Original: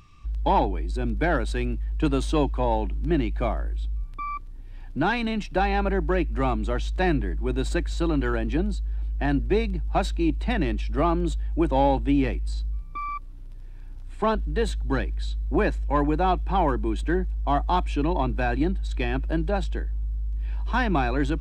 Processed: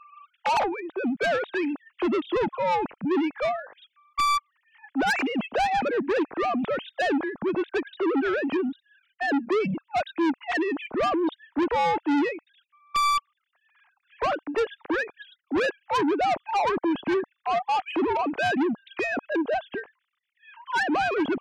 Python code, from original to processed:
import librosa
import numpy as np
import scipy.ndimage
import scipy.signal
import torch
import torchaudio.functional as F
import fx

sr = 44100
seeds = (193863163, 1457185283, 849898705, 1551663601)

y = fx.sine_speech(x, sr)
y = 10.0 ** (-25.0 / 20.0) * np.tanh(y / 10.0 ** (-25.0 / 20.0))
y = F.gain(torch.from_numpy(y), 4.5).numpy()